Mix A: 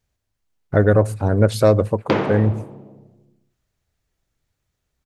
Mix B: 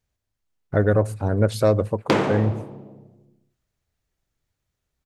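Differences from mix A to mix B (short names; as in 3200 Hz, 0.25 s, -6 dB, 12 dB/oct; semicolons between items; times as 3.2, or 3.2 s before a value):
speech -4.0 dB; background: remove running mean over 5 samples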